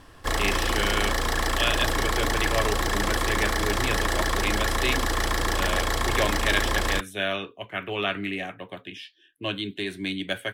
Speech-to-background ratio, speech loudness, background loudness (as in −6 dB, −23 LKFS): −3.5 dB, −29.5 LKFS, −26.0 LKFS